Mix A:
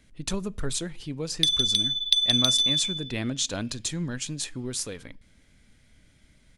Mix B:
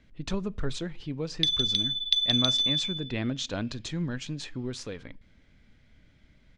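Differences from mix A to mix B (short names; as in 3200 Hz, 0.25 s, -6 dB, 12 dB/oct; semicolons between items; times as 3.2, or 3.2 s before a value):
background: send on; master: add air absorption 160 m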